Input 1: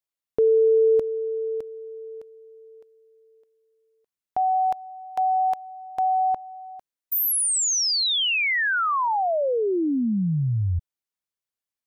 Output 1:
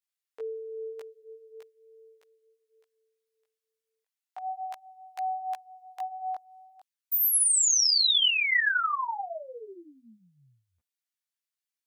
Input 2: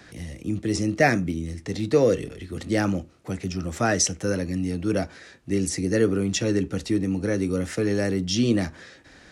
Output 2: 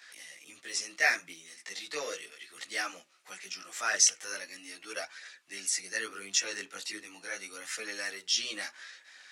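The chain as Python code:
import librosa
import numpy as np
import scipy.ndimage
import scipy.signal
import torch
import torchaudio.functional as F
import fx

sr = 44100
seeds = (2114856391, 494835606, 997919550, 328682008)

y = fx.chorus_voices(x, sr, voices=2, hz=0.38, base_ms=17, depth_ms=3.9, mix_pct=55)
y = scipy.signal.sosfilt(scipy.signal.butter(2, 1500.0, 'highpass', fs=sr, output='sos'), y)
y = y * 10.0 ** (3.0 / 20.0)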